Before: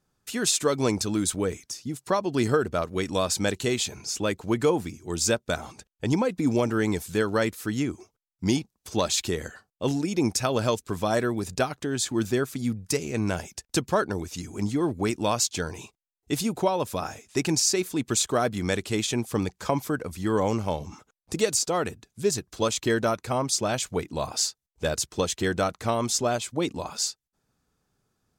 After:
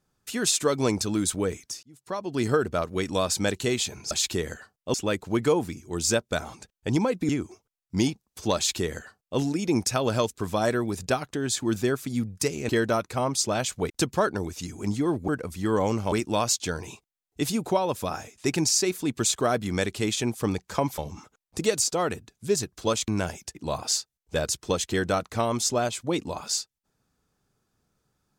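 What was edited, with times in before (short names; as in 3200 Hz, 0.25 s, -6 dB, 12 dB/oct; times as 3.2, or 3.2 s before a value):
1.83–2.57 fade in
6.46–7.78 cut
9.05–9.88 copy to 4.11
13.18–13.65 swap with 22.83–24.04
19.89–20.73 move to 15.03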